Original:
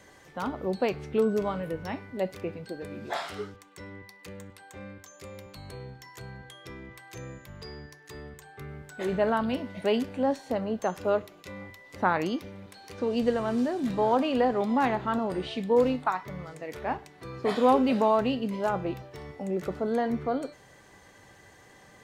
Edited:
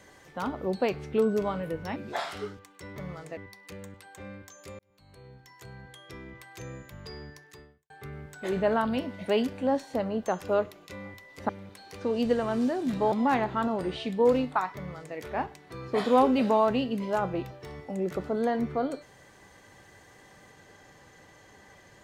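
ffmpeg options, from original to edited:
ffmpeg -i in.wav -filter_complex "[0:a]asplit=8[link_01][link_02][link_03][link_04][link_05][link_06][link_07][link_08];[link_01]atrim=end=1.962[link_09];[link_02]atrim=start=2.928:end=3.932[link_10];[link_03]atrim=start=16.258:end=16.672[link_11];[link_04]atrim=start=3.928:end=5.35,asetpts=PTS-STARTPTS,afade=type=out:start_time=1.418:duration=0.004:curve=hsin[link_12];[link_05]atrim=start=5.35:end=8.46,asetpts=PTS-STARTPTS,afade=type=in:duration=1.93:curve=qsin,afade=type=out:start_time=2.64:duration=0.47:curve=qua[link_13];[link_06]atrim=start=8.46:end=12.052,asetpts=PTS-STARTPTS,afade=type=in:duration=0.004:curve=hsin[link_14];[link_07]atrim=start=12.458:end=14.092[link_15];[link_08]atrim=start=14.628[link_16];[link_09][link_10]acrossfade=duration=0.004:curve1=hsin:curve2=hsin[link_17];[link_17][link_11]acrossfade=duration=0.004:curve1=hsin:curve2=hsin[link_18];[link_12][link_13][link_14]concat=n=3:v=0:a=1[link_19];[link_18][link_19]acrossfade=duration=0.004:curve1=hsin:curve2=hsin[link_20];[link_20][link_15]acrossfade=duration=0.004:curve1=hsin:curve2=hsin[link_21];[link_21][link_16]acrossfade=duration=0.004:curve1=hsin:curve2=hsin" out.wav

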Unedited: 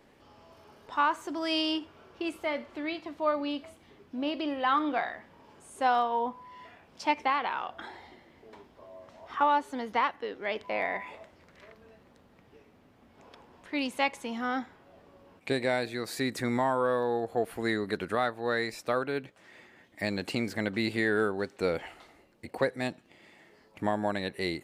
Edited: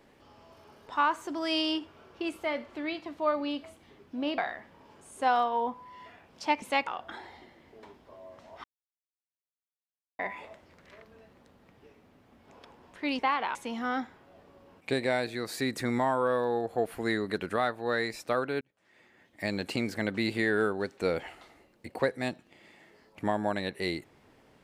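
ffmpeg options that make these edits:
ffmpeg -i in.wav -filter_complex "[0:a]asplit=9[link_01][link_02][link_03][link_04][link_05][link_06][link_07][link_08][link_09];[link_01]atrim=end=4.382[link_10];[link_02]atrim=start=4.968:end=7.212[link_11];[link_03]atrim=start=13.888:end=14.142[link_12];[link_04]atrim=start=7.568:end=9.34,asetpts=PTS-STARTPTS,afade=type=out:start_time=1.768:duration=0.004:curve=hsin[link_13];[link_05]atrim=start=9.34:end=10.89,asetpts=PTS-STARTPTS,volume=0[link_14];[link_06]atrim=start=10.89:end=13.892,asetpts=PTS-STARTPTS,afade=type=in:duration=0.004:curve=hsin[link_15];[link_07]atrim=start=7.208:end=7.572[link_16];[link_08]atrim=start=14.138:end=19.2,asetpts=PTS-STARTPTS,afade=type=out:start_time=5.058:duration=0.004:curve=hsin[link_17];[link_09]atrim=start=19.2,asetpts=PTS-STARTPTS,afade=type=in:duration=0.94[link_18];[link_10][link_11]acrossfade=duration=0.004:curve1=hsin:curve2=hsin[link_19];[link_19][link_12]acrossfade=duration=0.004:curve1=hsin:curve2=hsin[link_20];[link_13][link_14][link_15]concat=n=3:v=0:a=1[link_21];[link_20][link_21]acrossfade=duration=0.004:curve1=hsin:curve2=hsin[link_22];[link_22][link_16]acrossfade=duration=0.004:curve1=hsin:curve2=hsin[link_23];[link_17][link_18]concat=n=2:v=0:a=1[link_24];[link_23][link_24]acrossfade=duration=0.004:curve1=hsin:curve2=hsin" out.wav

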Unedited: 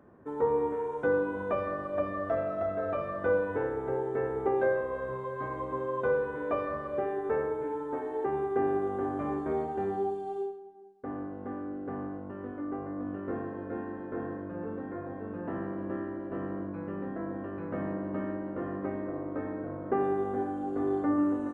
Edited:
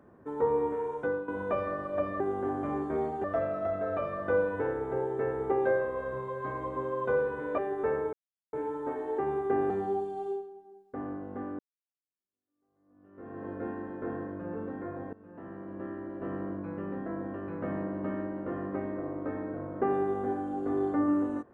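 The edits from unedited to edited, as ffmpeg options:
ffmpeg -i in.wav -filter_complex "[0:a]asplit=9[link_01][link_02][link_03][link_04][link_05][link_06][link_07][link_08][link_09];[link_01]atrim=end=1.28,asetpts=PTS-STARTPTS,afade=type=out:start_time=0.9:duration=0.38:silence=0.266073[link_10];[link_02]atrim=start=1.28:end=2.202,asetpts=PTS-STARTPTS,afade=type=in:duration=0.004:curve=hsin:silence=0.266073[link_11];[link_03]atrim=start=8.758:end=9.802[link_12];[link_04]atrim=start=2.198:end=6.542[link_13];[link_05]atrim=start=7.038:end=7.59,asetpts=PTS-STARTPTS,afade=type=out:start_time=0.548:duration=0.004:curve=hsin,apad=pad_dur=0.4[link_14];[link_06]atrim=start=7.59:end=8.762,asetpts=PTS-STARTPTS,afade=type=in:duration=0.004:curve=hsin[link_15];[link_07]atrim=start=9.798:end=11.69,asetpts=PTS-STARTPTS,afade=type=out:start_time=1.888:duration=0.004:curve=hsin[link_16];[link_08]atrim=start=11.69:end=15.23,asetpts=PTS-STARTPTS,afade=type=in:duration=1.86:curve=exp,afade=type=out:start_time=3.536:duration=0.004:curve=hsin:silence=0.112202[link_17];[link_09]atrim=start=15.23,asetpts=PTS-STARTPTS,afade=type=in:duration=1.24:silence=0.112202[link_18];[link_10][link_11]concat=n=2:v=0:a=1[link_19];[link_19][link_12]acrossfade=duration=0.004:curve1=hsin:curve2=hsin[link_20];[link_20][link_13]acrossfade=duration=0.004:curve1=hsin:curve2=hsin[link_21];[link_14][link_15]concat=n=2:v=0:a=1[link_22];[link_21][link_22]acrossfade=duration=0.004:curve1=hsin:curve2=hsin[link_23];[link_16][link_17][link_18]concat=n=3:v=0:a=1[link_24];[link_23][link_24]acrossfade=duration=0.004:curve1=hsin:curve2=hsin" out.wav

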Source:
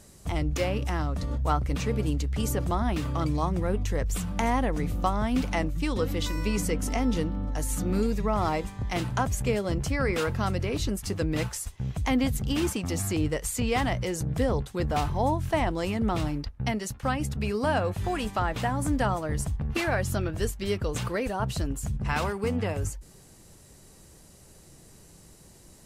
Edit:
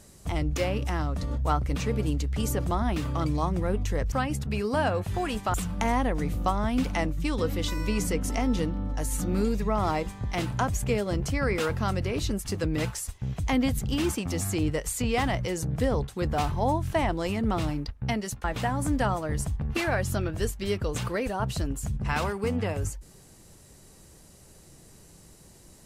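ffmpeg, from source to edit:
ffmpeg -i in.wav -filter_complex "[0:a]asplit=4[link_01][link_02][link_03][link_04];[link_01]atrim=end=4.122[link_05];[link_02]atrim=start=17.018:end=18.442[link_06];[link_03]atrim=start=4.118:end=17.022[link_07];[link_04]atrim=start=18.438[link_08];[link_05][link_06]acrossfade=duration=0.004:curve1=hsin:curve2=hsin[link_09];[link_09][link_07]acrossfade=duration=0.004:curve1=hsin:curve2=hsin[link_10];[link_10][link_08]acrossfade=duration=0.004:curve1=hsin:curve2=hsin" out.wav

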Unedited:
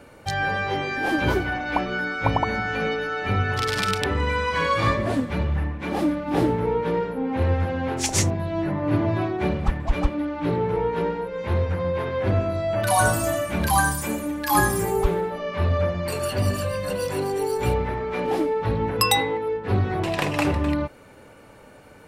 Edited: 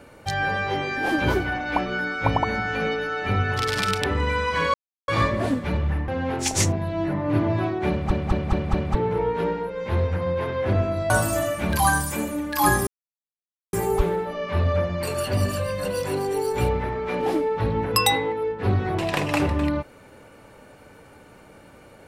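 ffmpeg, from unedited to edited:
ffmpeg -i in.wav -filter_complex "[0:a]asplit=10[link_01][link_02][link_03][link_04][link_05][link_06][link_07][link_08][link_09][link_10];[link_01]atrim=end=4.74,asetpts=PTS-STARTPTS,afade=type=out:start_time=4.736:duration=0.004:curve=hsin,apad=pad_dur=0.34[link_11];[link_02]atrim=start=4.74:end=5.742,asetpts=PTS-STARTPTS,afade=type=in:duration=0.004:curve=hsin[link_12];[link_03]atrim=start=7.658:end=9.692[link_13];[link_04]atrim=start=9.478:end=9.692[link_14];[link_05]atrim=start=9.478:end=9.692[link_15];[link_06]atrim=start=9.478:end=9.692[link_16];[link_07]atrim=start=9.478:end=9.692[link_17];[link_08]atrim=start=10.528:end=12.682[link_18];[link_09]atrim=start=13.008:end=14.78,asetpts=PTS-STARTPTS,afade=type=out:start_time=1.768:duration=0.004:curve=hsin,apad=pad_dur=0.86[link_19];[link_10]atrim=start=14.78,asetpts=PTS-STARTPTS,afade=type=in:duration=0.004:curve=hsin[link_20];[link_11][link_12]concat=n=2:v=0:a=1[link_21];[link_21][link_13]acrossfade=duration=0.004:curve1=hsin:curve2=hsin[link_22];[link_22][link_14]acrossfade=duration=0.004:curve1=hsin:curve2=hsin[link_23];[link_23][link_15]acrossfade=duration=0.004:curve1=hsin:curve2=hsin[link_24];[link_24][link_16]acrossfade=duration=0.004:curve1=hsin:curve2=hsin[link_25];[link_25][link_17]acrossfade=duration=0.004:curve1=hsin:curve2=hsin[link_26];[link_26][link_18]acrossfade=duration=0.004:curve1=hsin:curve2=hsin[link_27];[link_19][link_20]concat=n=2:v=0:a=1[link_28];[link_27][link_28]acrossfade=duration=0.004:curve1=hsin:curve2=hsin" out.wav

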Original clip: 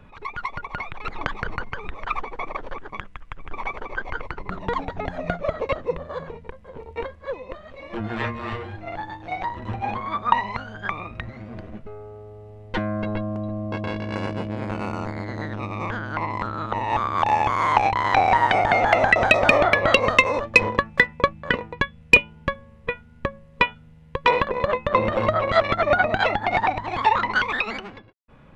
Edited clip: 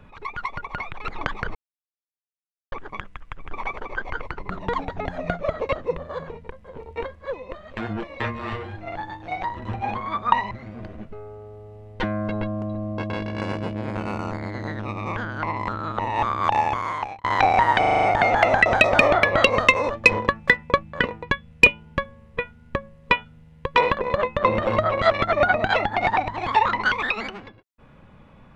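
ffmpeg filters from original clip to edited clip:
ffmpeg -i in.wav -filter_complex "[0:a]asplit=13[link_01][link_02][link_03][link_04][link_05][link_06][link_07][link_08][link_09][link_10][link_11][link_12][link_13];[link_01]atrim=end=1.55,asetpts=PTS-STARTPTS,afade=type=out:start_time=1.546:duration=0.004:curve=hsin[link_14];[link_02]atrim=start=1.55:end=2.72,asetpts=PTS-STARTPTS,volume=0[link_15];[link_03]atrim=start=2.72:end=7.772,asetpts=PTS-STARTPTS,afade=type=in:duration=0.004:curve=hsin[link_16];[link_04]atrim=start=7.768:end=8.202,asetpts=PTS-STARTPTS,areverse[link_17];[link_05]atrim=start=8.198:end=10.512[link_18];[link_06]atrim=start=11.248:end=17.98,asetpts=PTS-STARTPTS,afade=type=out:start_time=6.012:duration=0.72[link_19];[link_07]atrim=start=17.98:end=18.572,asetpts=PTS-STARTPTS,afade=type=in:duration=0.004:curve=hsin[link_20];[link_08]atrim=start=18.528:end=18.572[link_21];[link_09]atrim=start=18.528:end=18.572[link_22];[link_10]atrim=start=18.528:end=18.572[link_23];[link_11]atrim=start=18.528:end=18.572[link_24];[link_12]atrim=start=18.528:end=18.572[link_25];[link_13]atrim=start=18.528[link_26];[link_14][link_15][link_16]concat=n=3:v=0:a=1[link_27];[link_27][link_17]acrossfade=duration=0.004:curve1=hsin:curve2=hsin[link_28];[link_28][link_18]acrossfade=duration=0.004:curve1=hsin:curve2=hsin[link_29];[link_19][link_20]concat=n=2:v=0:a=1[link_30];[link_29][link_30]acrossfade=duration=0.004:curve1=hsin:curve2=hsin[link_31];[link_31][link_21]acrossfade=duration=0.004:curve1=hsin:curve2=hsin[link_32];[link_32][link_22]acrossfade=duration=0.004:curve1=hsin:curve2=hsin[link_33];[link_33][link_23]acrossfade=duration=0.004:curve1=hsin:curve2=hsin[link_34];[link_34][link_24]acrossfade=duration=0.004:curve1=hsin:curve2=hsin[link_35];[link_35][link_25]acrossfade=duration=0.004:curve1=hsin:curve2=hsin[link_36];[link_36][link_26]acrossfade=duration=0.004:curve1=hsin:curve2=hsin" out.wav

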